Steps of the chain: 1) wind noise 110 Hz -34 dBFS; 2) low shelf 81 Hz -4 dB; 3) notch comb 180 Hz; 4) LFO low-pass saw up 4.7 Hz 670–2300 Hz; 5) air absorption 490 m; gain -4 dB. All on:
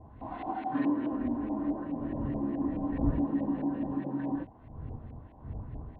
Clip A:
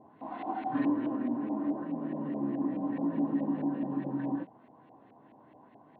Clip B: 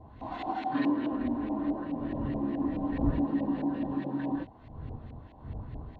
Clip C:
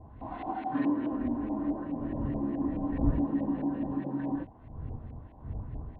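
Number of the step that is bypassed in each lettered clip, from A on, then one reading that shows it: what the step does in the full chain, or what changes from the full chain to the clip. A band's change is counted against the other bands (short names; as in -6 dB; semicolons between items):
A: 1, 125 Hz band -6.0 dB; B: 5, 2 kHz band +3.0 dB; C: 2, momentary loudness spread change -1 LU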